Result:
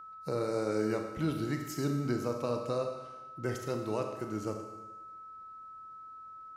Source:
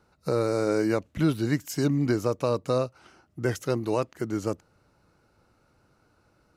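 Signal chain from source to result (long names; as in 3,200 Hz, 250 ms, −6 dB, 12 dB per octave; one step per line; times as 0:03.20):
four-comb reverb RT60 1.1 s, combs from 29 ms, DRR 4 dB
steady tone 1,300 Hz −37 dBFS
level −8.5 dB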